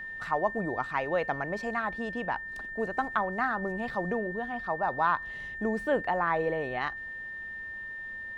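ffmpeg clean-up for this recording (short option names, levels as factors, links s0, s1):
-af "bandreject=f=1800:w=30"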